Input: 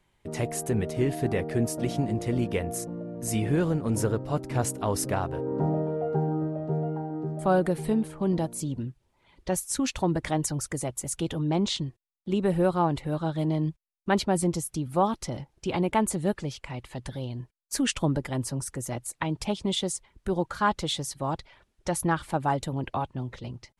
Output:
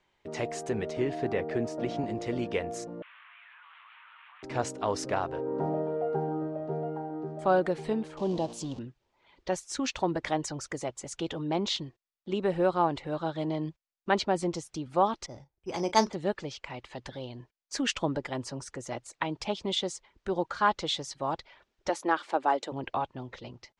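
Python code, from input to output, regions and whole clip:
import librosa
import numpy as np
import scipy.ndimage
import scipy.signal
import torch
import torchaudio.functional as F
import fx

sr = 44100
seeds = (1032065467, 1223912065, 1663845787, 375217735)

y = fx.chain(x, sr, fx.high_shelf(hz=3400.0, db=-8.0),
    fx.band_squash(depth_pct=40), at=(0.97, 2.04))
y = fx.chain(y, sr, fx.delta_mod(bps=16000, step_db=-36.5),
    fx.steep_highpass(hz=1000.0, slope=48),
    fx.level_steps(step_db=18), at=(3.02, 4.43))
y = fx.chain(y, sr, fx.zero_step(step_db=-36.5),
    fx.band_shelf(hz=1700.0, db=-12.5, octaves=1.1), at=(8.17, 8.79))
y = fx.chain(y, sr, fx.doubler(ms=36.0, db=-14.0),
    fx.resample_bad(factor=8, down='filtered', up='hold'),
    fx.band_widen(depth_pct=100), at=(15.26, 16.13))
y = fx.chain(y, sr, fx.highpass(hz=290.0, slope=24),
    fx.low_shelf(hz=450.0, db=4.0), at=(21.89, 22.72))
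y = scipy.signal.sosfilt(scipy.signal.butter(4, 6600.0, 'lowpass', fs=sr, output='sos'), y)
y = fx.bass_treble(y, sr, bass_db=-11, treble_db=-1)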